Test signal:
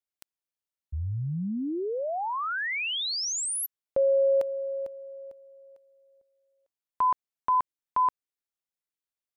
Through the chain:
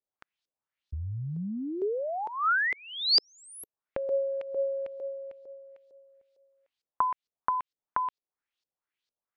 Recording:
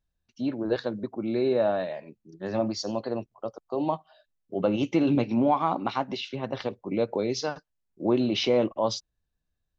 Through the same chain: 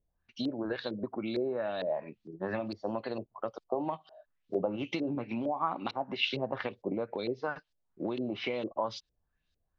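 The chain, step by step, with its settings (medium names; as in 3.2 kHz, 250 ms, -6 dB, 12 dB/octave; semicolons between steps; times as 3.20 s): compression 12:1, threshold -32 dBFS; LFO low-pass saw up 2.2 Hz 430–5000 Hz; treble shelf 2.1 kHz +10 dB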